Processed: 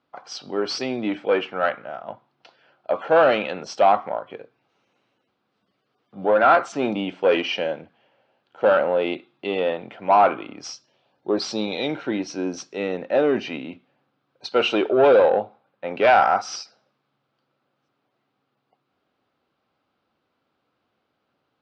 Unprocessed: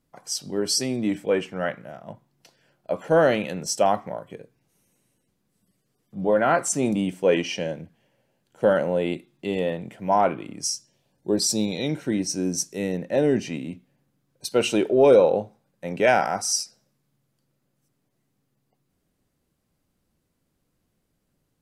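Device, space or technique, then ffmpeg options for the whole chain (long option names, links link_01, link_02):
overdrive pedal into a guitar cabinet: -filter_complex "[0:a]asettb=1/sr,asplit=3[link_01][link_02][link_03];[link_01]atrim=end=15.284[link_04];[link_02]atrim=start=15.28:end=15.94,asetpts=PTS-STARTPTS,afade=type=in:duration=0.004:curve=qsin,afade=type=out:start_time=0.656:duration=0.004:curve=qsin,lowpass=3900[link_05];[link_03]atrim=start=15.936[link_06];[link_04][link_05]acrossfade=duration=0.004:curve1=hsin:curve2=qsin[link_07];[link_07][link_06]acrossfade=duration=0.004:curve1=qsin:curve2=hsin,asplit=2[link_08][link_09];[link_09]highpass=frequency=720:poles=1,volume=15dB,asoftclip=type=tanh:threshold=-6dB[link_10];[link_08][link_10]amix=inputs=2:normalize=0,lowpass=frequency=4100:poles=1,volume=-6dB,highpass=92,equalizer=frequency=170:width_type=q:width=4:gain=-7,equalizer=frequency=780:width_type=q:width=4:gain=4,equalizer=frequency=1300:width_type=q:width=4:gain=6,equalizer=frequency=1900:width_type=q:width=4:gain=-5,lowpass=frequency=4200:width=0.5412,lowpass=frequency=4200:width=1.3066,volume=-2dB"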